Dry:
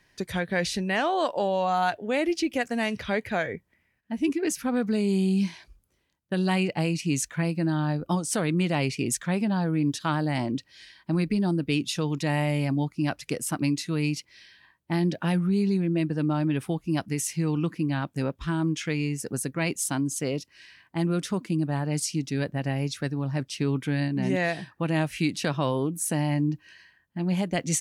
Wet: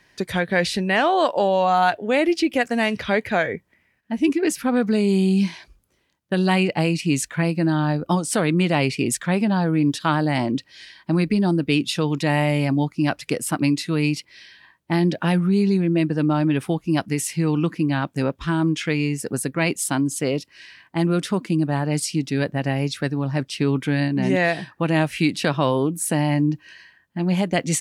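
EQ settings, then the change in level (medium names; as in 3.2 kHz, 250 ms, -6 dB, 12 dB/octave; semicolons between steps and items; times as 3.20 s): dynamic bell 6.2 kHz, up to -6 dB, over -52 dBFS, Q 3.6; bass shelf 110 Hz -7.5 dB; treble shelf 7.9 kHz -4.5 dB; +7.0 dB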